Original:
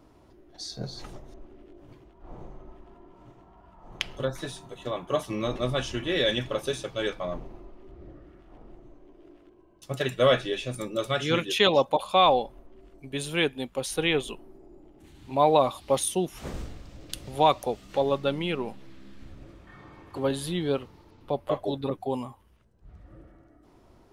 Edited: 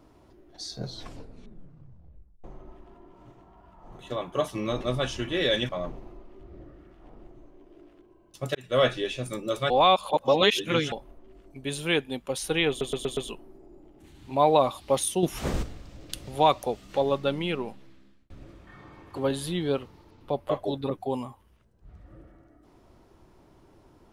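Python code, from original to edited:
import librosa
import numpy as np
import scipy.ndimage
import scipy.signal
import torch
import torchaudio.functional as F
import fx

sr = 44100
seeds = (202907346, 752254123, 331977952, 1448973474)

y = fx.edit(x, sr, fx.tape_stop(start_s=0.84, length_s=1.6),
    fx.cut(start_s=3.99, length_s=0.75),
    fx.cut(start_s=6.44, length_s=0.73),
    fx.fade_in_span(start_s=10.03, length_s=0.3),
    fx.reverse_span(start_s=11.18, length_s=1.22),
    fx.stutter(start_s=14.17, slice_s=0.12, count=5),
    fx.clip_gain(start_s=16.23, length_s=0.4, db=7.5),
    fx.fade_out_span(start_s=18.54, length_s=0.76), tone=tone)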